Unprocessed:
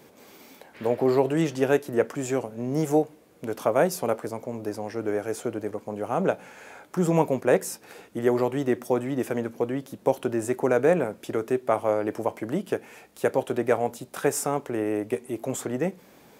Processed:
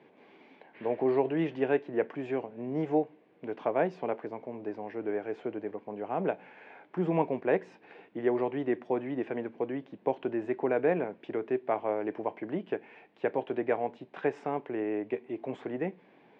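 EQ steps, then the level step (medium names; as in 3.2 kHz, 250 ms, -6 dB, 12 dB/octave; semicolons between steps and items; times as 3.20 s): cabinet simulation 190–2800 Hz, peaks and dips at 230 Hz -3 dB, 540 Hz -5 dB, 1.3 kHz -9 dB; -3.5 dB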